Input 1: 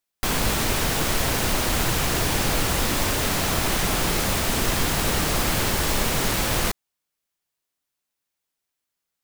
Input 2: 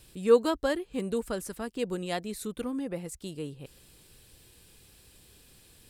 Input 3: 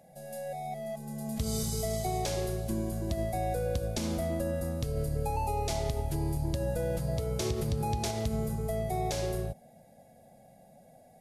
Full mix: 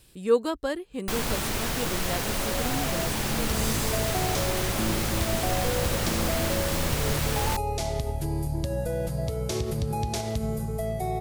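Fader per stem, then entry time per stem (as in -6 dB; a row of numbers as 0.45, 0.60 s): -6.0, -1.0, +2.5 dB; 0.85, 0.00, 2.10 s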